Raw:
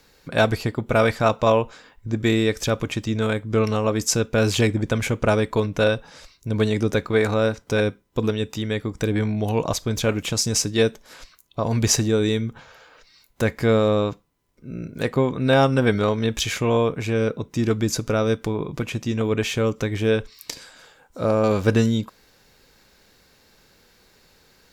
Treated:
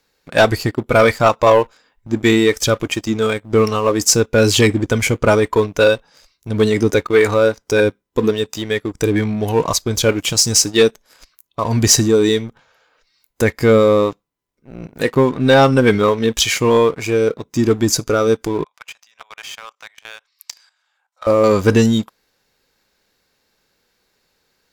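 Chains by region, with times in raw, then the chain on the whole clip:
0:18.64–0:21.27: inverse Chebyshev high-pass filter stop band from 380 Hz + high-shelf EQ 9,200 Hz −11 dB + output level in coarse steps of 12 dB
whole clip: noise reduction from a noise print of the clip's start 7 dB; low-shelf EQ 200 Hz −6.5 dB; leveller curve on the samples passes 2; level +2.5 dB

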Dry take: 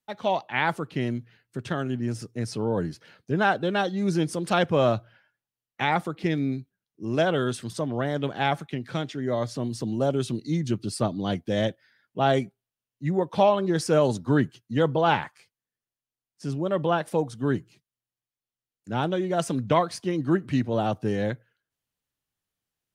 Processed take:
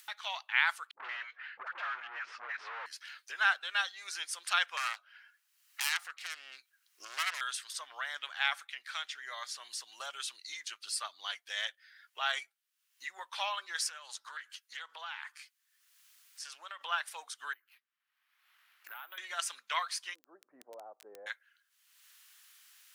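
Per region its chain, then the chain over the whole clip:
0:00.91–0:02.86: all-pass dispersion highs, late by 133 ms, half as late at 540 Hz + mid-hump overdrive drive 31 dB, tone 1,100 Hz, clips at −15.5 dBFS + head-to-tape spacing loss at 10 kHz 36 dB
0:04.77–0:07.41: phase distortion by the signal itself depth 0.89 ms + downward compressor 2.5 to 1, threshold −27 dBFS + notch filter 3,500 Hz, Q 19
0:13.89–0:16.81: high-pass filter 380 Hz 6 dB per octave + downward compressor 5 to 1, threshold −33 dBFS + highs frequency-modulated by the lows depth 0.1 ms
0:17.53–0:19.18: low-pass filter 2,100 Hz + downward compressor 12 to 1, threshold −35 dBFS + bad sample-rate conversion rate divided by 3×, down none, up hold
0:20.13–0:21.26: inverse Chebyshev low-pass filter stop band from 3,100 Hz, stop band 80 dB + surface crackle 16 per second −46 dBFS
whole clip: high-pass filter 1,300 Hz 24 dB per octave; upward compression, threshold −38 dBFS

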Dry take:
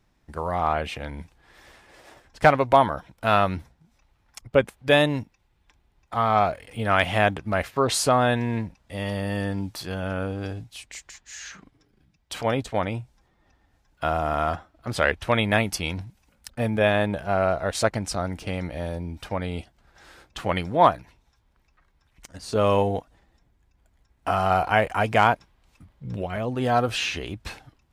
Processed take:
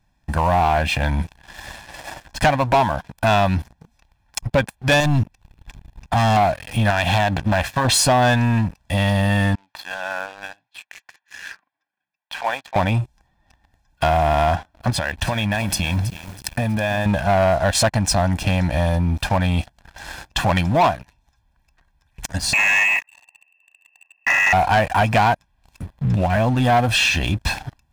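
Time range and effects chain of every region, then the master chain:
0:05.00–0:06.37: low-shelf EQ 200 Hz +8.5 dB + gain into a clipping stage and back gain 23 dB
0:06.90–0:07.85: downward compressor, threshold −22 dBFS + highs frequency-modulated by the lows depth 0.71 ms
0:09.55–0:12.76: high-pass filter 1,200 Hz + head-to-tape spacing loss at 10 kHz 38 dB
0:14.90–0:17.06: downward compressor 12 to 1, threshold −32 dBFS + feedback echo at a low word length 323 ms, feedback 55%, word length 8 bits, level −14 dB
0:22.53–0:24.53: one scale factor per block 3 bits + phaser with its sweep stopped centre 1,800 Hz, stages 8 + voice inversion scrambler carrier 2,700 Hz
whole clip: comb filter 1.2 ms, depth 78%; downward compressor 2 to 1, threshold −33 dBFS; leveller curve on the samples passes 3; level +3.5 dB

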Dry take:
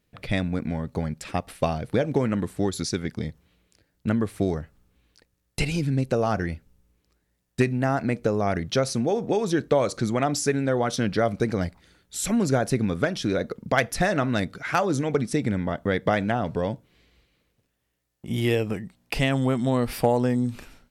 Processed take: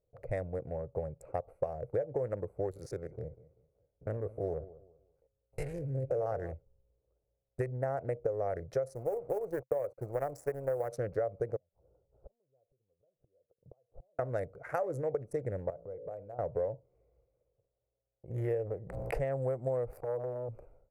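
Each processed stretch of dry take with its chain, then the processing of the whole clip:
0:02.71–0:06.53: spectrum averaged block by block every 50 ms + dynamic equaliser 3,400 Hz, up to +5 dB, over −50 dBFS, Q 1.2 + repeating echo 193 ms, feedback 29%, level −18 dB
0:08.95–0:10.92: bit-depth reduction 6 bits, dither none + power curve on the samples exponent 1.4
0:11.56–0:14.19: low-pass filter 1,100 Hz 24 dB per octave + downward compressor 2.5 to 1, threshold −38 dBFS + gate with flip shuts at −31 dBFS, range −33 dB
0:15.70–0:16.39: hum removal 55.65 Hz, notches 10 + downward compressor 4 to 1, threshold −36 dBFS
0:18.30–0:19.38: low-pass filter 2,800 Hz 6 dB per octave + background raised ahead of every attack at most 30 dB per second
0:19.98–0:20.49: one scale factor per block 7 bits + downward compressor 5 to 1, threshold −21 dBFS + saturating transformer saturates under 960 Hz
whole clip: adaptive Wiener filter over 25 samples; drawn EQ curve 130 Hz 0 dB, 230 Hz −18 dB, 520 Hz +12 dB, 1,000 Hz −4 dB, 1,900 Hz −2 dB, 3,300 Hz −25 dB, 7,000 Hz −7 dB, 11,000 Hz 0 dB; downward compressor 10 to 1, threshold −20 dBFS; level −8.5 dB

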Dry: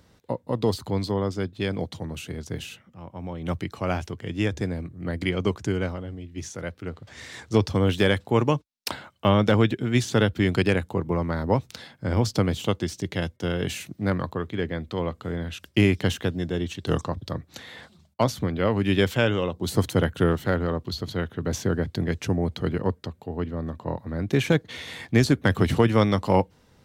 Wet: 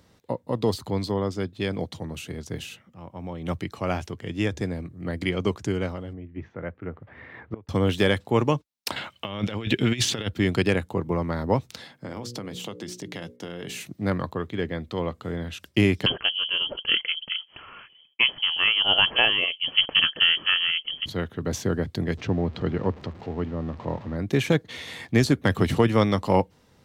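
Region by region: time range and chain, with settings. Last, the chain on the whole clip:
0:06.13–0:07.69: low-pass filter 2,100 Hz 24 dB per octave + gate with flip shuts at −18 dBFS, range −26 dB
0:08.96–0:10.28: parametric band 2,800 Hz +10 dB 1.2 octaves + compressor whose output falls as the input rises −24 dBFS, ratio −0.5
0:11.92–0:13.85: high-pass filter 120 Hz 24 dB per octave + mains-hum notches 60/120/180/240/300/360/420/480/540 Hz + downward compressor 10 to 1, threshold −30 dBFS
0:16.06–0:21.06: voice inversion scrambler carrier 3,200 Hz + dynamic equaliser 570 Hz, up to +8 dB, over −44 dBFS, Q 0.8
0:22.17–0:24.16: converter with a step at zero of −37 dBFS + high-frequency loss of the air 180 metres
whole clip: low-shelf EQ 62 Hz −6.5 dB; notch filter 1,500 Hz, Q 22

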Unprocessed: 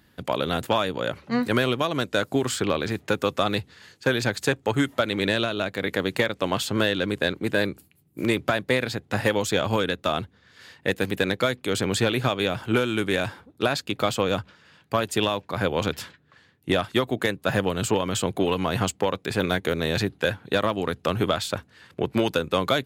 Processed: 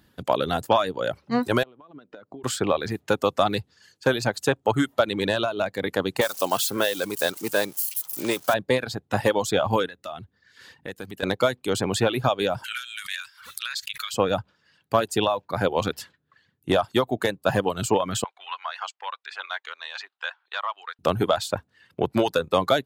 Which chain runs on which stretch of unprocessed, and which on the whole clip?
0:01.63–0:02.44: high-pass filter 170 Hz + downward compressor 16 to 1, threshold −34 dBFS + head-to-tape spacing loss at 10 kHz 33 dB
0:06.21–0:08.54: spike at every zero crossing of −20.5 dBFS + high-pass filter 340 Hz 6 dB per octave
0:09.87–0:11.23: parametric band 1,800 Hz +4 dB 0.4 octaves + downward compressor 2 to 1, threshold −38 dBFS
0:12.64–0:14.14: inverse Chebyshev high-pass filter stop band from 780 Hz + background raised ahead of every attack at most 51 dB per second
0:18.24–0:20.99: high-pass filter 1,000 Hz 24 dB per octave + high-frequency loss of the air 160 metres
whole clip: dynamic equaliser 770 Hz, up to +6 dB, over −37 dBFS, Q 1.2; reverb reduction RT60 0.89 s; parametric band 2,100 Hz −4.5 dB 0.65 octaves

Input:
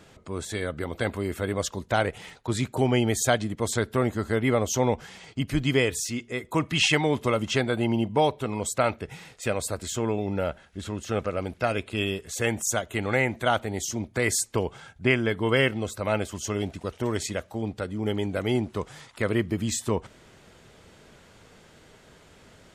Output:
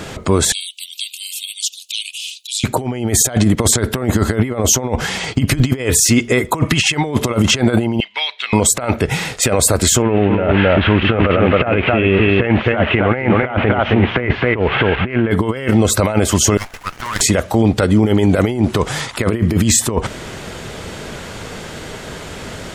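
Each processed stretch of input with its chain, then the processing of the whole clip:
0:00.52–0:02.64: Butterworth high-pass 2,600 Hz 96 dB per octave + downward compressor 2 to 1, threshold −47 dBFS + highs frequency-modulated by the lows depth 0.95 ms
0:08.00–0:08.53: Chebyshev band-pass filter 2,000–4,200 Hz + downward compressor, threshold −39 dBFS
0:10.02–0:15.31: spike at every zero crossing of −19.5 dBFS + Butterworth low-pass 2,900 Hz 48 dB per octave + single-tap delay 265 ms −5 dB
0:16.57–0:17.21: high-pass filter 1,200 Hz 24 dB per octave + parametric band 3,300 Hz −6.5 dB 2.7 octaves + windowed peak hold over 9 samples
whole clip: dynamic equaliser 3,700 Hz, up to −5 dB, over −40 dBFS, Q 0.98; compressor whose output falls as the input rises −30 dBFS, ratio −0.5; boost into a limiter +21 dB; level −2 dB

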